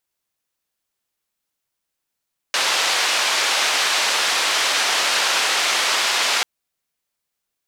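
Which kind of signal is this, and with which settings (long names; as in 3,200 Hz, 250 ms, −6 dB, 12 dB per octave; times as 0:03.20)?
band-limited noise 620–4,700 Hz, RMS −19.5 dBFS 3.89 s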